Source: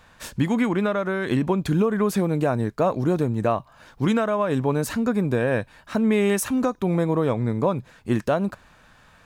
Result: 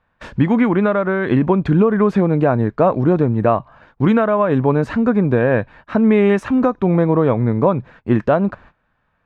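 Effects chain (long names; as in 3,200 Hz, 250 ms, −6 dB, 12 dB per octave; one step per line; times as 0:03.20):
low-pass filter 2,100 Hz 12 dB per octave
noise gate −48 dBFS, range −19 dB
level +7 dB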